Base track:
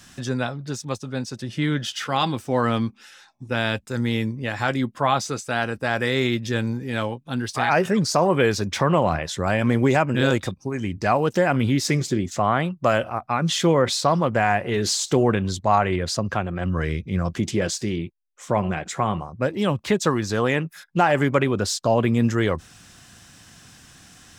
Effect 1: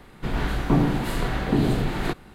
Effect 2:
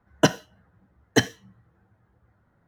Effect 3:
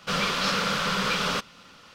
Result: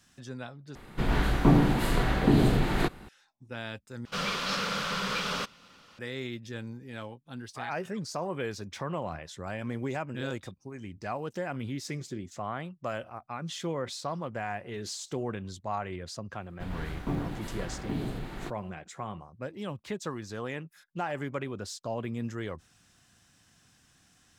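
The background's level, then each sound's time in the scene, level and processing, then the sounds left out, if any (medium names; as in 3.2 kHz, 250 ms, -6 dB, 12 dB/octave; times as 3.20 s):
base track -15 dB
0.75 s: replace with 1 -0.5 dB
4.05 s: replace with 3 -5.5 dB
16.37 s: add 1 -12 dB + companding laws mixed up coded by A
not used: 2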